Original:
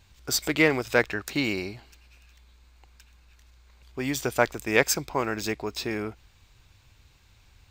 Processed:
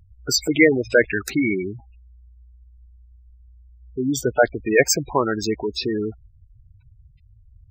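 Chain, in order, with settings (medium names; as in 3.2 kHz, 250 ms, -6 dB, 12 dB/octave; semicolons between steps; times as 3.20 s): 4.23–4.66 s: level-controlled noise filter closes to 1.6 kHz, open at -17.5 dBFS; spectral gate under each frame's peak -10 dB strong; trim +8 dB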